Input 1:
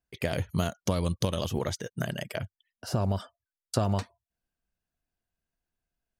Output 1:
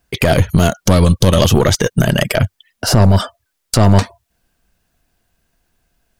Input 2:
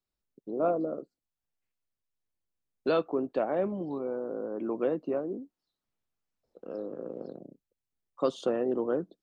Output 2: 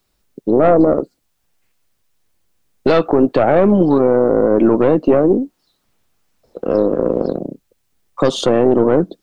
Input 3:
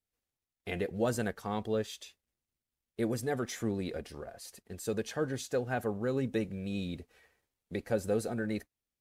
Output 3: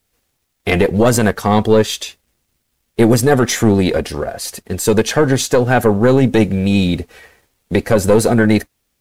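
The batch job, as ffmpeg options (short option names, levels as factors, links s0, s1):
-af "aeval=exprs='(tanh(10*val(0)+0.65)-tanh(0.65))/10':c=same,acontrast=46,alimiter=level_in=11.2:limit=0.891:release=50:level=0:latency=1,volume=0.891"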